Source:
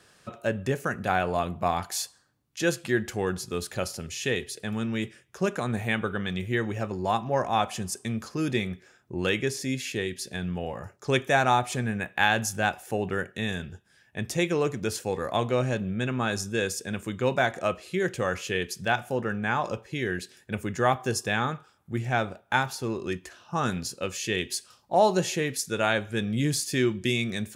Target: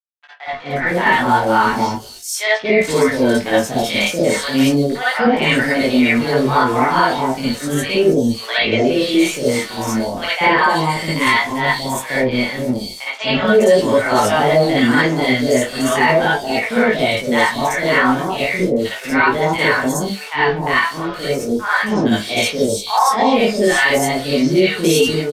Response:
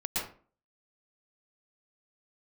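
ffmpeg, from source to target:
-filter_complex "[0:a]acrossover=split=140|6300[a][b][c];[b]dynaudnorm=f=330:g=5:m=12.5dB[d];[a][d][c]amix=inputs=3:normalize=0,aeval=exprs='val(0)*gte(abs(val(0)),0.0299)':c=same,asetrate=50951,aresample=44100,atempo=0.865537,acrossover=split=710|4000[e][f][g];[e]adelay=260[h];[g]adelay=510[i];[h][f][i]amix=inputs=3:normalize=0[j];[1:a]atrim=start_sample=2205,asetrate=83790,aresample=44100[k];[j][k]afir=irnorm=-1:irlink=0,flanger=delay=19.5:depth=6.5:speed=0.33,asetrate=48000,aresample=44100,aresample=32000,aresample=44100,alimiter=level_in=10.5dB:limit=-1dB:release=50:level=0:latency=1,volume=-2.5dB"

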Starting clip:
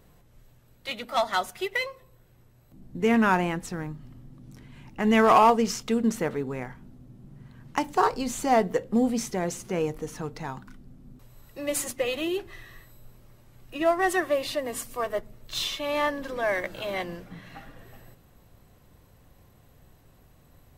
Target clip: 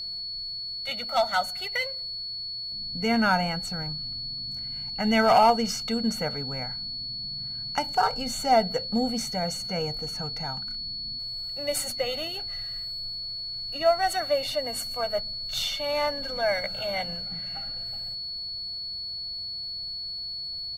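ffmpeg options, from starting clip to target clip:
-af "aecho=1:1:1.4:0.86,aeval=exprs='val(0)+0.0355*sin(2*PI*4400*n/s)':c=same,volume=-3dB"

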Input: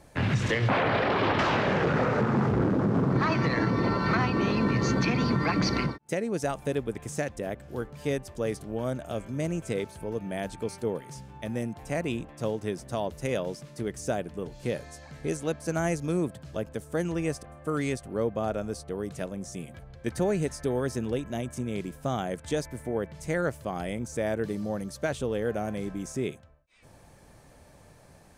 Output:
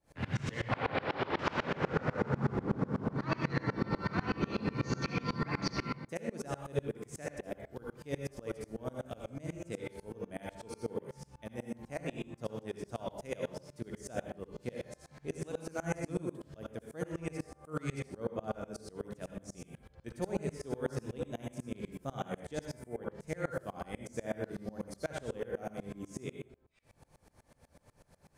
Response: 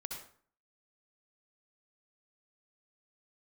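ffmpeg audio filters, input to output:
-filter_complex "[1:a]atrim=start_sample=2205[a];[0:a][a]afir=irnorm=-1:irlink=0,aeval=exprs='val(0)*pow(10,-27*if(lt(mod(-8.1*n/s,1),2*abs(-8.1)/1000),1-mod(-8.1*n/s,1)/(2*abs(-8.1)/1000),(mod(-8.1*n/s,1)-2*abs(-8.1)/1000)/(1-2*abs(-8.1)/1000))/20)':c=same"

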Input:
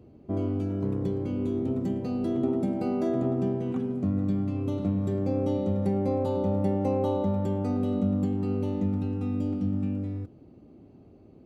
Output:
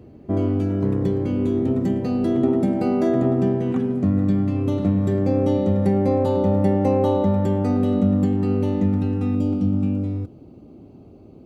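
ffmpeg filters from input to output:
-af "asetnsamples=n=441:p=0,asendcmd='9.35 equalizer g -9.5',equalizer=f=1.8k:t=o:w=0.33:g=6,volume=7.5dB"

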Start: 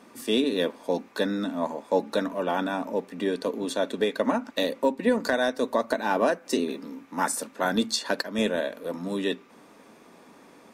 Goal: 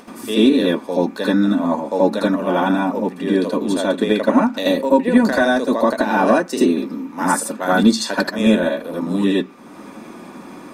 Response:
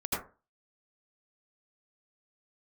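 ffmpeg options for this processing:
-filter_complex "[0:a]acompressor=mode=upward:threshold=-39dB:ratio=2.5[a];[1:a]atrim=start_sample=2205,atrim=end_sample=3969[b];[a][b]afir=irnorm=-1:irlink=0,volume=4dB"

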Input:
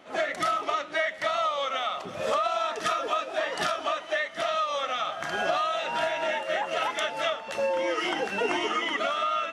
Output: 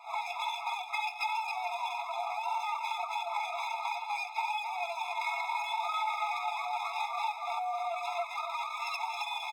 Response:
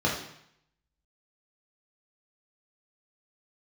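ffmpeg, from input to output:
-filter_complex "[0:a]flanger=delay=9.4:depth=7.3:regen=-11:speed=1.5:shape=sinusoidal,highpass=f=450:t=q:w=4.9,alimiter=limit=-21.5dB:level=0:latency=1:release=326,lowpass=f=2k:t=q:w=1.7,aemphasis=mode=reproduction:type=75fm,acompressor=threshold=-31dB:ratio=10,aeval=exprs='max(val(0),0)':c=same,aecho=1:1:4.3:0.7,aecho=1:1:275:0.531,asplit=2[a][b];[1:a]atrim=start_sample=2205,lowshelf=f=160:g=4.5,adelay=60[c];[b][c]afir=irnorm=-1:irlink=0,volume=-31dB[d];[a][d]amix=inputs=2:normalize=0,asetrate=58866,aresample=44100,atempo=0.749154,afftfilt=real='re*eq(mod(floor(b*sr/1024/680),2),1)':imag='im*eq(mod(floor(b*sr/1024/680),2),1)':win_size=1024:overlap=0.75,volume=5.5dB"

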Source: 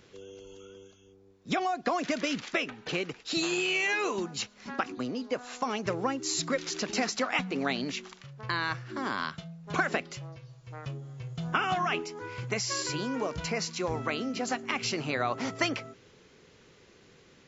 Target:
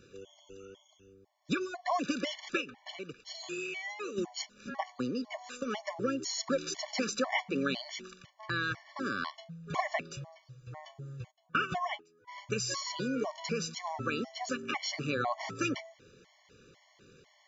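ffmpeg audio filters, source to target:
-filter_complex "[0:a]asplit=3[a][b][c];[a]afade=t=out:st=2.6:d=0.02[d];[b]acompressor=threshold=-41dB:ratio=2,afade=t=in:st=2.6:d=0.02,afade=t=out:st=4.16:d=0.02[e];[c]afade=t=in:st=4.16:d=0.02[f];[d][e][f]amix=inputs=3:normalize=0,asplit=3[g][h][i];[g]afade=t=out:st=11.3:d=0.02[j];[h]agate=range=-24dB:threshold=-28dB:ratio=16:detection=peak,afade=t=in:st=11.3:d=0.02,afade=t=out:st=12.27:d=0.02[k];[i]afade=t=in:st=12.27:d=0.02[l];[j][k][l]amix=inputs=3:normalize=0,afftfilt=real='re*gt(sin(2*PI*2*pts/sr)*(1-2*mod(floor(b*sr/1024/580),2)),0)':imag='im*gt(sin(2*PI*2*pts/sr)*(1-2*mod(floor(b*sr/1024/580),2)),0)':win_size=1024:overlap=0.75"

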